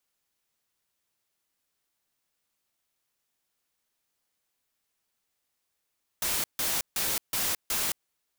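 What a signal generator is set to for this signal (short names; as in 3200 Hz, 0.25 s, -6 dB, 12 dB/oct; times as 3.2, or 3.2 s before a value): noise bursts white, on 0.22 s, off 0.15 s, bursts 5, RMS -28.5 dBFS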